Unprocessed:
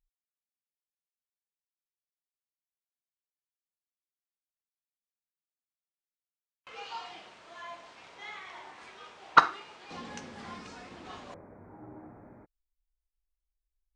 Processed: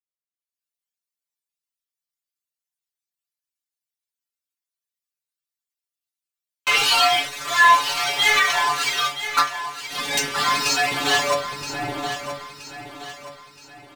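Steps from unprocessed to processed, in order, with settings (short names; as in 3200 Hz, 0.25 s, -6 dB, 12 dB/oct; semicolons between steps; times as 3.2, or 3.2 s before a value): HPF 77 Hz 24 dB/oct; reverb removal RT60 1.2 s; EQ curve 150 Hz 0 dB, 220 Hz -3 dB, 4500 Hz +14 dB; AGC gain up to 15 dB; sample leveller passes 5; metallic resonator 140 Hz, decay 0.28 s, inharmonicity 0.002; feedback echo 0.973 s, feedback 42%, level -11 dB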